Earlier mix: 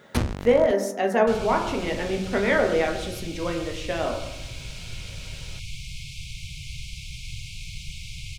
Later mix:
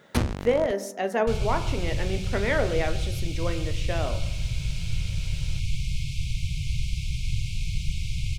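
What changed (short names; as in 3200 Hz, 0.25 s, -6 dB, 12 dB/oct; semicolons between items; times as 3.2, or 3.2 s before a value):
speech: send -8.5 dB; second sound: add low shelf 370 Hz +10.5 dB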